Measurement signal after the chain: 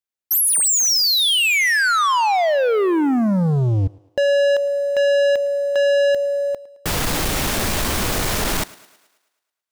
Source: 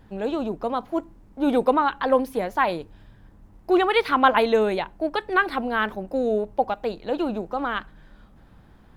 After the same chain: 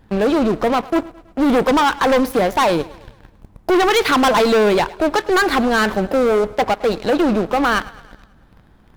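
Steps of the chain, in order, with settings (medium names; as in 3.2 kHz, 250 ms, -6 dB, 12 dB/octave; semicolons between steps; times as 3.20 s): waveshaping leveller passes 3; in parallel at +2 dB: compression, threshold -21 dBFS; on the sum: saturation -11.5 dBFS; thinning echo 108 ms, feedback 54%, high-pass 210 Hz, level -20 dB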